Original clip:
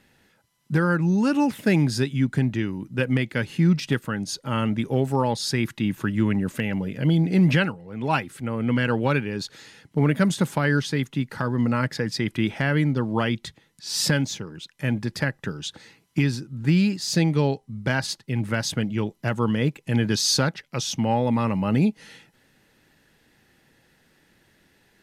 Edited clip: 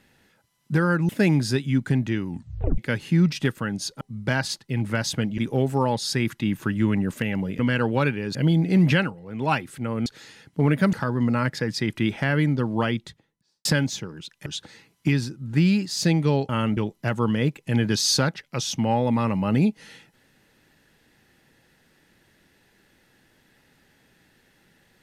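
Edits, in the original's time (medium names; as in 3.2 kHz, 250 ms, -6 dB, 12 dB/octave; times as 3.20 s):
1.09–1.56 s: delete
2.75 s: tape stop 0.50 s
4.48–4.76 s: swap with 17.60–18.97 s
8.68–9.44 s: move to 6.97 s
10.31–11.31 s: delete
13.16–14.03 s: studio fade out
14.84–15.57 s: delete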